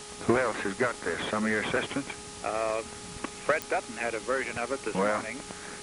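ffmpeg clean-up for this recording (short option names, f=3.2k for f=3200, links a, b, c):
-af "adeclick=t=4,bandreject=f=415.7:t=h:w=4,bandreject=f=831.4:t=h:w=4,bandreject=f=1.2471k:t=h:w=4,afwtdn=0.0079"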